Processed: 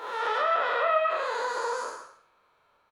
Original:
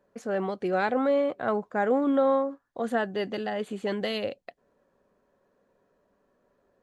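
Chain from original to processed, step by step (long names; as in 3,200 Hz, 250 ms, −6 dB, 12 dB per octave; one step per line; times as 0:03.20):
spectrum smeared in time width 717 ms
parametric band 350 Hz +3 dB 2.6 octaves
reverse bouncing-ball delay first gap 60 ms, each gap 1.15×, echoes 5
treble cut that deepens with the level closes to 1,300 Hz, closed at −21.5 dBFS
wrong playback speed 33 rpm record played at 78 rpm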